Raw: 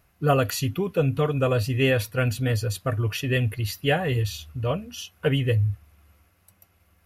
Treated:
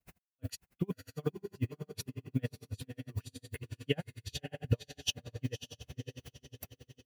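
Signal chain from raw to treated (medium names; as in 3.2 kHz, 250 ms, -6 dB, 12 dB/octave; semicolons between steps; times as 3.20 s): graphic EQ with 31 bands 160 Hz +5 dB, 250 Hz +7 dB, 1.25 kHz -7 dB, 12.5 kHz -5 dB; compression 10:1, threshold -35 dBFS, peak gain reduction 20.5 dB; added noise violet -68 dBFS; granulator 193 ms, grains 2.6 per s, pitch spread up and down by 0 st; echo that smears into a reverb 561 ms, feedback 48%, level -9.5 dB; logarithmic tremolo 11 Hz, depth 39 dB; trim +14 dB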